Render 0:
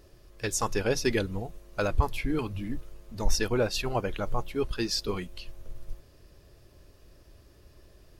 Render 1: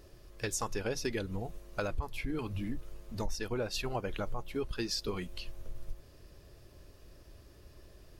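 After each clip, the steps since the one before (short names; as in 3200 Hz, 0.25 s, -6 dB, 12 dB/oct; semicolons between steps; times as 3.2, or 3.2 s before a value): compressor 4:1, threshold -32 dBFS, peak gain reduction 14 dB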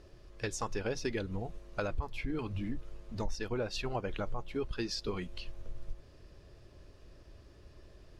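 air absorption 67 m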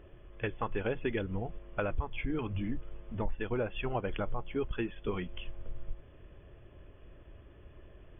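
brick-wall FIR low-pass 3500 Hz; gain +2 dB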